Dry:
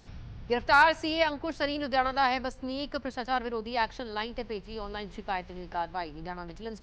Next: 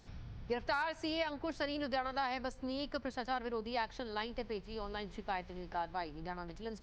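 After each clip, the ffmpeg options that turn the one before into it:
-af "bandreject=f=2800:w=27,acompressor=threshold=0.0447:ratio=10,volume=0.596"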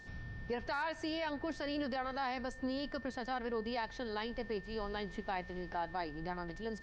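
-af "equalizer=f=290:w=0.59:g=2.5,alimiter=level_in=1.88:limit=0.0631:level=0:latency=1:release=10,volume=0.531,aeval=exprs='val(0)+0.00224*sin(2*PI*1800*n/s)':c=same,volume=1.12"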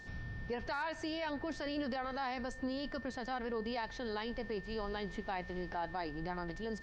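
-af "alimiter=level_in=2.37:limit=0.0631:level=0:latency=1:release=18,volume=0.422,volume=1.26"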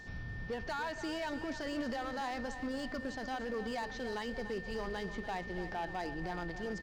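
-af "areverse,acompressor=mode=upward:threshold=0.00631:ratio=2.5,areverse,asoftclip=type=hard:threshold=0.02,aecho=1:1:290|580|870|1160|1450|1740:0.266|0.146|0.0805|0.0443|0.0243|0.0134,volume=1.12"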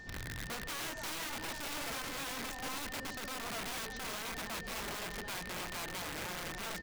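-af "aeval=exprs='(mod(59.6*val(0)+1,2)-1)/59.6':c=same"

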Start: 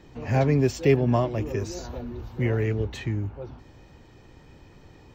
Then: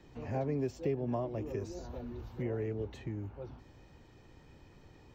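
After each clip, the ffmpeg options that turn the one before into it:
-filter_complex "[0:a]acrossover=split=240|940[s0][s1][s2];[s0]acompressor=threshold=0.0224:ratio=4[s3];[s1]acompressor=threshold=0.0562:ratio=4[s4];[s2]acompressor=threshold=0.00355:ratio=4[s5];[s3][s4][s5]amix=inputs=3:normalize=0,volume=0.447"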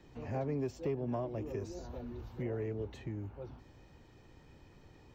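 -af "asoftclip=type=tanh:threshold=0.0668,volume=0.891"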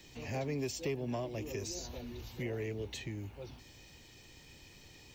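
-af "aexciter=amount=5.6:drive=3.7:freq=2000,volume=0.891"

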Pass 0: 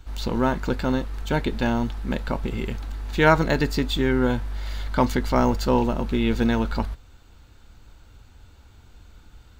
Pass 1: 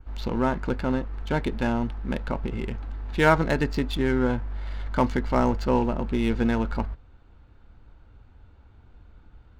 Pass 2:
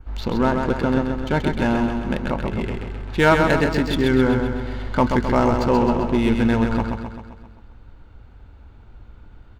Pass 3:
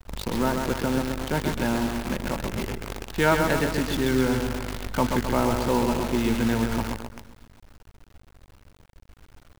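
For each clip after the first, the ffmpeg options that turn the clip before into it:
-af "adynamicequalizer=threshold=0.00282:dfrequency=3700:dqfactor=3:tfrequency=3700:tqfactor=3:attack=5:release=100:ratio=0.375:range=2.5:mode=cutabove:tftype=bell,adynamicsmooth=sensitivity=4.5:basefreq=2100,volume=0.794"
-filter_complex "[0:a]asoftclip=type=tanh:threshold=0.355,asplit=2[s0][s1];[s1]aecho=0:1:131|262|393|524|655|786|917:0.562|0.315|0.176|0.0988|0.0553|0.031|0.0173[s2];[s0][s2]amix=inputs=2:normalize=0,volume=1.78"
-filter_complex "[0:a]acrossover=split=200[s0][s1];[s0]crystalizer=i=10:c=0[s2];[s2][s1]amix=inputs=2:normalize=0,acrusher=bits=5:dc=4:mix=0:aa=0.000001,volume=0.531"

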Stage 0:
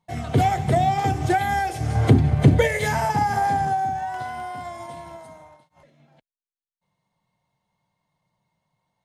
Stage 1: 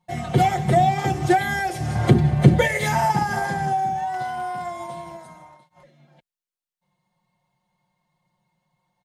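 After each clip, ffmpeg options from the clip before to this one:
-af "aecho=1:1:5.6:0.69"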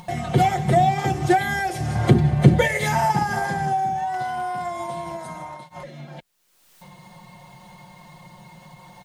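-af "acompressor=mode=upward:threshold=0.0708:ratio=2.5"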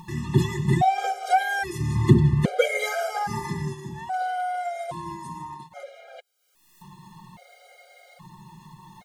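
-af "afftfilt=real='re*gt(sin(2*PI*0.61*pts/sr)*(1-2*mod(floor(b*sr/1024/410),2)),0)':imag='im*gt(sin(2*PI*0.61*pts/sr)*(1-2*mod(floor(b*sr/1024/410),2)),0)':win_size=1024:overlap=0.75"

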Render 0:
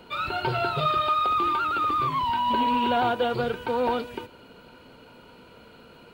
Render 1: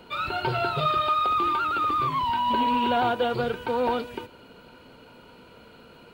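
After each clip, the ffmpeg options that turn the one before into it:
-af anull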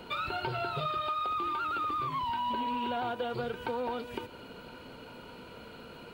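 -af "acompressor=threshold=0.0178:ratio=4,volume=1.26"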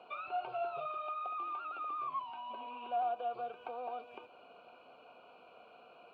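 -filter_complex "[0:a]acrossover=split=3700[s0][s1];[s1]acompressor=threshold=0.00141:ratio=4:attack=1:release=60[s2];[s0][s2]amix=inputs=2:normalize=0,asplit=3[s3][s4][s5];[s3]bandpass=f=730:t=q:w=8,volume=1[s6];[s4]bandpass=f=1090:t=q:w=8,volume=0.501[s7];[s5]bandpass=f=2440:t=q:w=8,volume=0.355[s8];[s6][s7][s8]amix=inputs=3:normalize=0,volume=1.41"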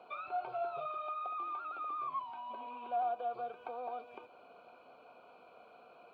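-af "bandreject=f=2800:w=5.8"

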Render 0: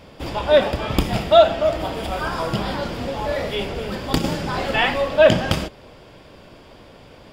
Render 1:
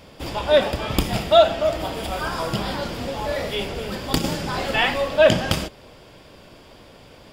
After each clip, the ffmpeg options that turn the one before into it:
-af "highshelf=f=4400:g=7,volume=0.794"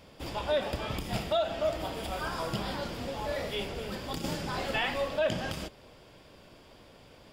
-af "alimiter=limit=0.266:level=0:latency=1:release=157,volume=0.398"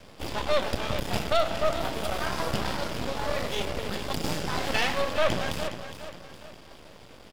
-af "aecho=1:1:413|826|1239|1652:0.299|0.119|0.0478|0.0191,aeval=exprs='max(val(0),0)':c=same,volume=2.51"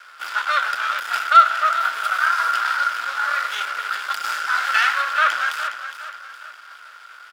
-af "highpass=f=1400:t=q:w=13,volume=1.33"

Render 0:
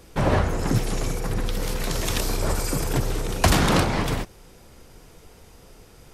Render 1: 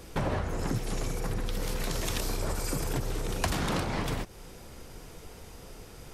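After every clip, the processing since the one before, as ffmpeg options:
-af "acompressor=threshold=0.0282:ratio=4,volume=1.26"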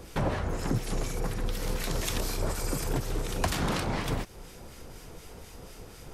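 -filter_complex "[0:a]acrossover=split=1300[s0][s1];[s0]aeval=exprs='val(0)*(1-0.5/2+0.5/2*cos(2*PI*4.1*n/s))':c=same[s2];[s1]aeval=exprs='val(0)*(1-0.5/2-0.5/2*cos(2*PI*4.1*n/s))':c=same[s3];[s2][s3]amix=inputs=2:normalize=0,volume=1.41"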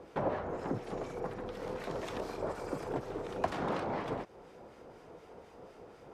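-af "bandpass=f=600:t=q:w=0.84:csg=0"

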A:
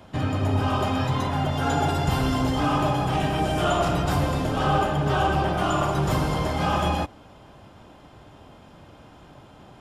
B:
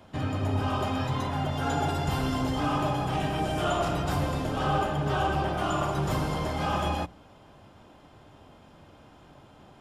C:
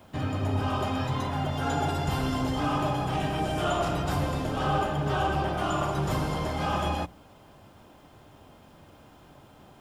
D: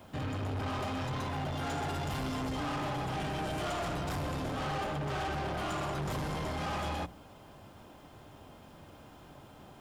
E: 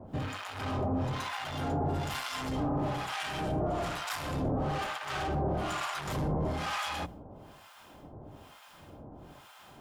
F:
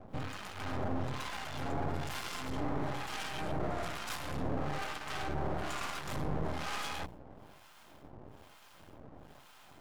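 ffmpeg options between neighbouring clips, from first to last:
-af "bandreject=f=60:t=h:w=6,bandreject=f=120:t=h:w=6,bandreject=f=180:t=h:w=6,volume=0.596"
-af "acrusher=bits=10:mix=0:aa=0.000001"
-af "asoftclip=type=tanh:threshold=0.0237"
-filter_complex "[0:a]acrossover=split=880[s0][s1];[s0]aeval=exprs='val(0)*(1-1/2+1/2*cos(2*PI*1.1*n/s))':c=same[s2];[s1]aeval=exprs='val(0)*(1-1/2-1/2*cos(2*PI*1.1*n/s))':c=same[s3];[s2][s3]amix=inputs=2:normalize=0,volume=2.24"
-af "aeval=exprs='max(val(0),0)':c=same"

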